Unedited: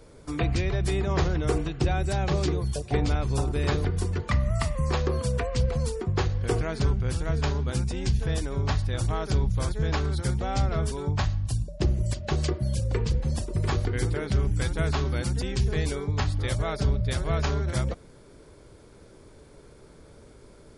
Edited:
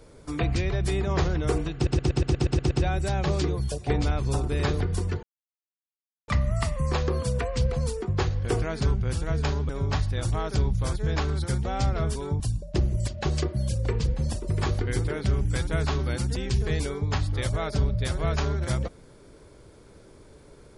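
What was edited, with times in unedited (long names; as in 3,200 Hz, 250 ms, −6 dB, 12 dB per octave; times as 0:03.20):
0:01.75: stutter 0.12 s, 9 plays
0:04.27: splice in silence 1.05 s
0:07.68–0:08.45: remove
0:11.16–0:11.46: remove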